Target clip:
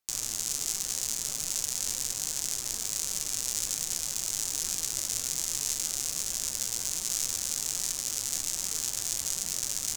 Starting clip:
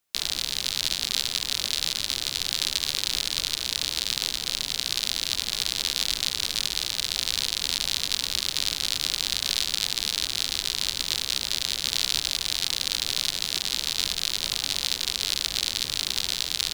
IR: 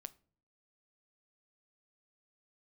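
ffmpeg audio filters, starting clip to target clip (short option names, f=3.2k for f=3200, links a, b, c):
-af "flanger=delay=8.5:depth=7.9:regen=61:speed=0.76:shape=triangular,asetrate=74088,aresample=44100"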